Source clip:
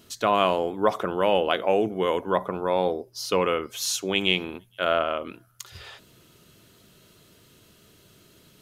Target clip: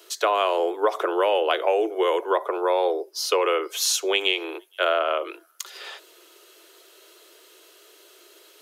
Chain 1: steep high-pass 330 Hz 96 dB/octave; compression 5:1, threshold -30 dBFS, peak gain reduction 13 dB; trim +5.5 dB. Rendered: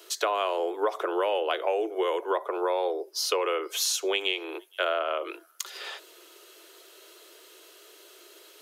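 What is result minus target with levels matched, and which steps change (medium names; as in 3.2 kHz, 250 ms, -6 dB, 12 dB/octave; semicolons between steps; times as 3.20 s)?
compression: peak gain reduction +5.5 dB
change: compression 5:1, threshold -23 dBFS, peak gain reduction 7.5 dB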